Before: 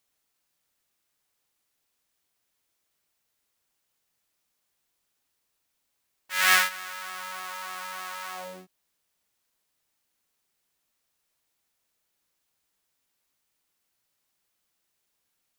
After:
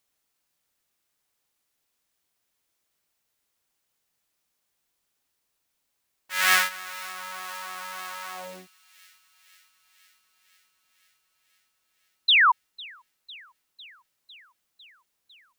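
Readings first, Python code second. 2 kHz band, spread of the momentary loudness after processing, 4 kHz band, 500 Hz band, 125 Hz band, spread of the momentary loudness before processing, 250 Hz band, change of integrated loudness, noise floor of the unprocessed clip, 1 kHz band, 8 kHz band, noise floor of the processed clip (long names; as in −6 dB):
+3.5 dB, 23 LU, +6.5 dB, 0.0 dB, can't be measured, 17 LU, 0.0 dB, +3.0 dB, −78 dBFS, +5.5 dB, 0.0 dB, −78 dBFS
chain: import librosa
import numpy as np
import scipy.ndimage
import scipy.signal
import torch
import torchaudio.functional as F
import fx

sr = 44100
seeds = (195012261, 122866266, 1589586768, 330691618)

y = fx.spec_paint(x, sr, seeds[0], shape='fall', start_s=12.28, length_s=0.24, low_hz=900.0, high_hz=4200.0, level_db=-17.0)
y = fx.echo_wet_highpass(y, sr, ms=502, feedback_pct=72, hz=2700.0, wet_db=-20)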